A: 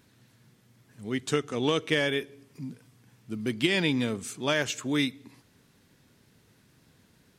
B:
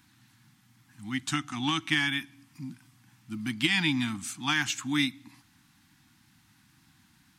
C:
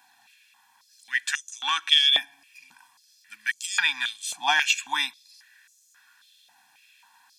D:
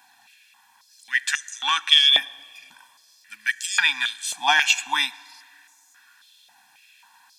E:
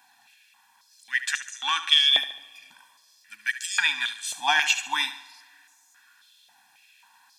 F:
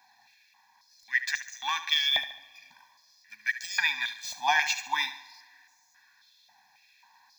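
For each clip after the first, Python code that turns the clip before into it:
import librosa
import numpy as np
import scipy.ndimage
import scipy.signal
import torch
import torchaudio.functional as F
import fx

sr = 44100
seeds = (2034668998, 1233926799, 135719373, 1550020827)

y1 = scipy.signal.sosfilt(scipy.signal.cheby1(4, 1.0, [320.0, 750.0], 'bandstop', fs=sr, output='sos'), x)
y1 = fx.low_shelf(y1, sr, hz=360.0, db=-4.5)
y1 = y1 * 10.0 ** (2.5 / 20.0)
y2 = y1 + 0.95 * np.pad(y1, (int(1.2 * sr / 1000.0), 0))[:len(y1)]
y2 = fx.filter_held_highpass(y2, sr, hz=3.7, low_hz=690.0, high_hz=6600.0)
y3 = fx.rev_plate(y2, sr, seeds[0], rt60_s=2.2, hf_ratio=0.7, predelay_ms=0, drr_db=19.5)
y3 = y3 * 10.0 ** (3.5 / 20.0)
y4 = fx.echo_feedback(y3, sr, ms=72, feedback_pct=44, wet_db=-13)
y4 = y4 * 10.0 ** (-3.5 / 20.0)
y5 = scipy.ndimage.median_filter(y4, 3, mode='constant')
y5 = fx.fixed_phaser(y5, sr, hz=2000.0, stages=8)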